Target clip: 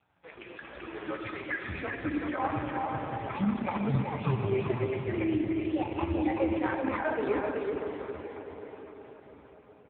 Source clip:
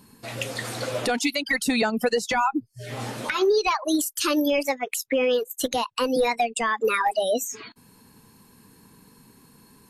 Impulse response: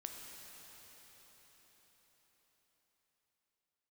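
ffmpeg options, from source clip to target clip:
-filter_complex "[0:a]lowpass=2400,asetnsamples=nb_out_samples=441:pad=0,asendcmd='1.6 equalizer g 2.5',equalizer=frequency=300:width_type=o:width=1.4:gain=-11.5,bandreject=frequency=430:width=12,alimiter=limit=-16.5dB:level=0:latency=1:release=293,afreqshift=-180,aecho=1:1:383:0.668[link_01];[1:a]atrim=start_sample=2205[link_02];[link_01][link_02]afir=irnorm=-1:irlink=0" -ar 8000 -c:a libopencore_amrnb -b:a 4750

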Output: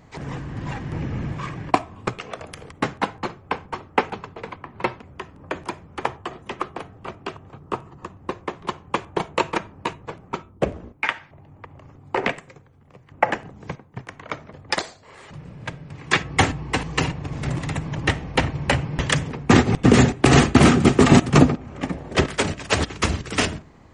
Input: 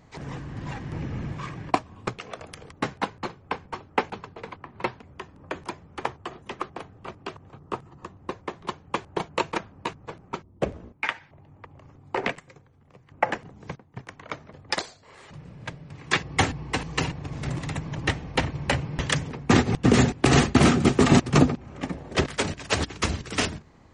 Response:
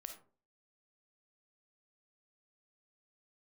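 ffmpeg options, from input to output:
-filter_complex "[0:a]asplit=2[link_01][link_02];[link_02]asuperstop=centerf=4900:order=4:qfactor=1.8[link_03];[1:a]atrim=start_sample=2205[link_04];[link_03][link_04]afir=irnorm=-1:irlink=0,volume=-6.5dB[link_05];[link_01][link_05]amix=inputs=2:normalize=0,volume=2.5dB"

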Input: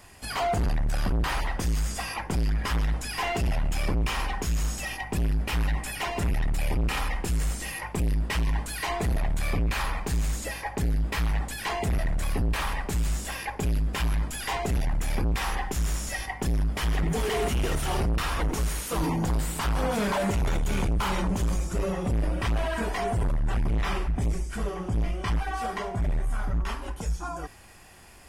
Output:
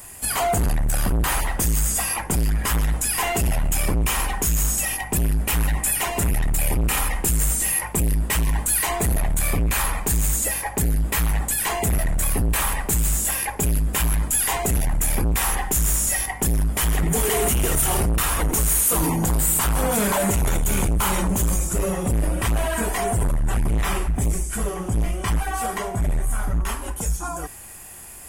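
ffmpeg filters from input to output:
ffmpeg -i in.wav -af "aexciter=amount=5.5:drive=4.4:freq=7000,volume=4.5dB" out.wav

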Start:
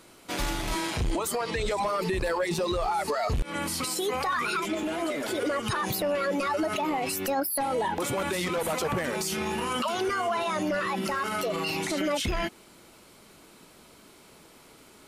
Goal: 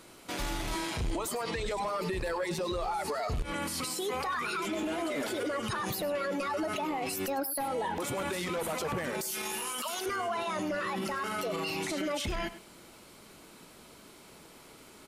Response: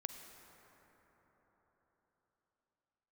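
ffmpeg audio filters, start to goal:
-filter_complex "[0:a]asettb=1/sr,asplit=3[link_01][link_02][link_03];[link_01]atrim=end=9.214[link_04];[link_02]atrim=start=9.21:end=10.06,asetpts=PTS-STARTPTS,afade=type=in:duration=0.004:curve=qsin,afade=type=out:start_time=0.846:duration=0.004:curve=qsin,aemphasis=mode=production:type=riaa[link_05];[link_03]atrim=start=10.056[link_06];[link_04][link_05]acrossfade=duration=0.004:curve1=hsin:curve2=qsin[link_07];[link_07][link_06]acrossfade=duration=0.004:curve1=qsin:curve2=hsin,alimiter=level_in=2.5dB:limit=-24dB:level=0:latency=1:release=36,volume=-2.5dB,asplit=2[link_08][link_09];[link_09]aecho=0:1:102:0.188[link_10];[link_08][link_10]amix=inputs=2:normalize=0"

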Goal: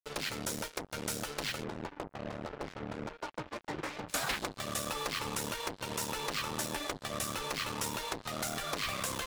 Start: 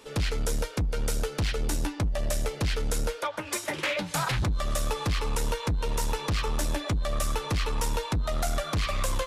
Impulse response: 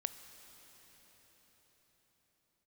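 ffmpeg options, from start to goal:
-filter_complex "[0:a]asplit=3[link_01][link_02][link_03];[link_01]afade=type=out:start_time=1.63:duration=0.02[link_04];[link_02]lowpass=1100,afade=type=in:start_time=1.63:duration=0.02,afade=type=out:start_time=4.08:duration=0.02[link_05];[link_03]afade=type=in:start_time=4.08:duration=0.02[link_06];[link_04][link_05][link_06]amix=inputs=3:normalize=0,afftfilt=real='re*lt(hypot(re,im),0.158)':imag='im*lt(hypot(re,im),0.158)':win_size=1024:overlap=0.75,acrusher=bits=5:mix=0:aa=0.5,volume=-2.5dB"

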